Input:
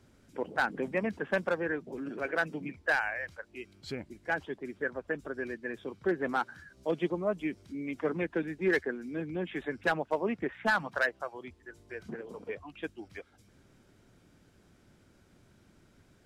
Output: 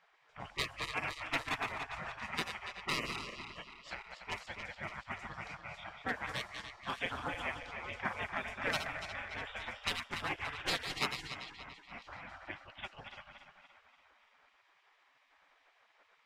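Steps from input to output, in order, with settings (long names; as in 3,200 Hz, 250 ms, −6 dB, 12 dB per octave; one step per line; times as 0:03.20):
feedback delay that plays each chunk backwards 144 ms, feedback 73%, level −7 dB
low-pass that shuts in the quiet parts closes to 2,100 Hz, open at −25.5 dBFS
gate on every frequency bin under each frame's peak −20 dB weak
level +7 dB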